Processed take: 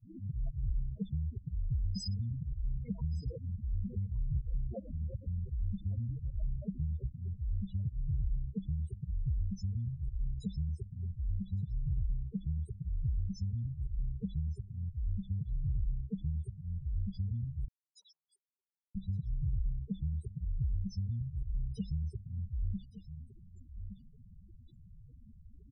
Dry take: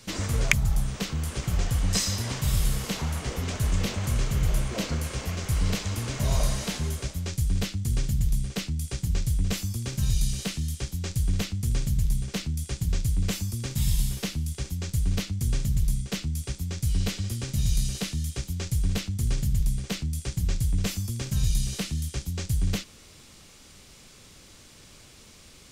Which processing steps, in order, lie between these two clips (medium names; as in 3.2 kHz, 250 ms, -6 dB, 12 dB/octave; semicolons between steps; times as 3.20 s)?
4.03–5.20 s: transient shaper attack +7 dB, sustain +2 dB; gate with hold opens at -43 dBFS; slow attack 205 ms; loudest bins only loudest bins 4; delay 1167 ms -19 dB; compression 2.5:1, threshold -39 dBFS, peak gain reduction 12.5 dB; 17.68–18.95 s: Chebyshev high-pass 920 Hz, order 4; trim +3.5 dB